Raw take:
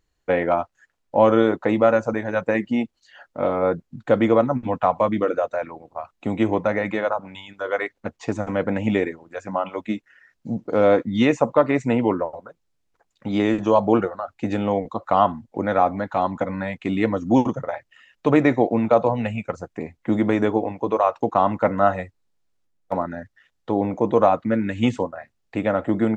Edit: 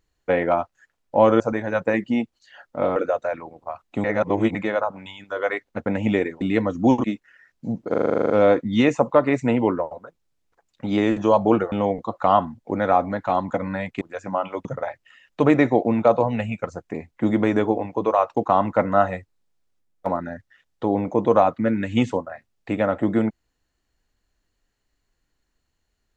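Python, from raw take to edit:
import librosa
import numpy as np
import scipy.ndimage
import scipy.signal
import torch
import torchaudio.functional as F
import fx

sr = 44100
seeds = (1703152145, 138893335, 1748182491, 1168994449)

y = fx.edit(x, sr, fx.cut(start_s=1.4, length_s=0.61),
    fx.cut(start_s=3.57, length_s=1.68),
    fx.reverse_span(start_s=6.33, length_s=0.51),
    fx.cut(start_s=8.15, length_s=0.52),
    fx.swap(start_s=9.22, length_s=0.64, other_s=16.88, other_length_s=0.63),
    fx.stutter(start_s=10.72, slice_s=0.04, count=11),
    fx.cut(start_s=14.14, length_s=0.45), tone=tone)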